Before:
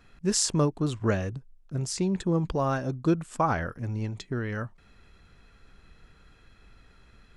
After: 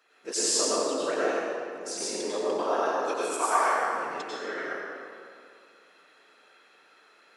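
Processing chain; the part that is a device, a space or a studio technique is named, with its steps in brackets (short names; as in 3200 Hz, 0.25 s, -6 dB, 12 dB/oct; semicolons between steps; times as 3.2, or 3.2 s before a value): 3.06–3.61 RIAA curve recording; whispering ghost (whisperiser; HPF 410 Hz 24 dB/oct; reverb RT60 2.3 s, pre-delay 87 ms, DRR -7.5 dB); gain -4 dB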